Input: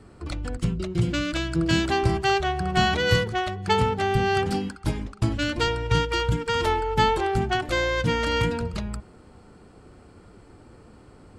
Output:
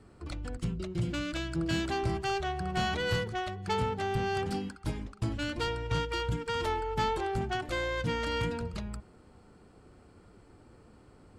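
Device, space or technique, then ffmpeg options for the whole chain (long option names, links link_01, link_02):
saturation between pre-emphasis and de-emphasis: -af "highshelf=frequency=3600:gain=7.5,asoftclip=type=tanh:threshold=-14dB,highshelf=frequency=3600:gain=-7.5,volume=-7dB"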